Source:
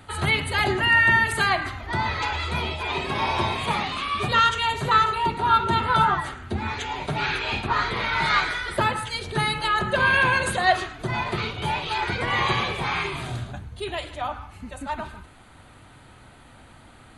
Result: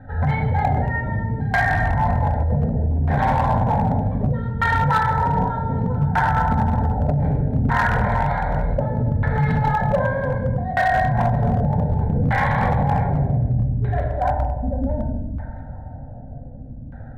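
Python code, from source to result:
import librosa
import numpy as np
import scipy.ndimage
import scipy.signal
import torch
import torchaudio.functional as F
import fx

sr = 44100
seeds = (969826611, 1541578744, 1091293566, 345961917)

p1 = fx.wiener(x, sr, points=41)
p2 = fx.fixed_phaser(p1, sr, hz=1800.0, stages=8)
p3 = fx.dynamic_eq(p2, sr, hz=650.0, q=7.6, threshold_db=-47.0, ratio=4.0, max_db=-3)
p4 = fx.notch(p3, sr, hz=4700.0, q=7.1)
p5 = fx.echo_alternate(p4, sr, ms=168, hz=1700.0, feedback_pct=74, wet_db=-14.0)
p6 = fx.room_shoebox(p5, sr, seeds[0], volume_m3=890.0, walls='mixed', distance_m=2.1)
p7 = fx.over_compress(p6, sr, threshold_db=-29.0, ratio=-0.5)
p8 = p6 + (p7 * 10.0 ** (0.5 / 20.0))
p9 = fx.filter_lfo_lowpass(p8, sr, shape='saw_down', hz=0.65, low_hz=300.0, high_hz=1700.0, q=1.5)
p10 = fx.clip_asym(p9, sr, top_db=-15.5, bottom_db=-12.0)
p11 = fx.high_shelf(p10, sr, hz=8300.0, db=6.0)
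y = p11 * 10.0 ** (2.5 / 20.0)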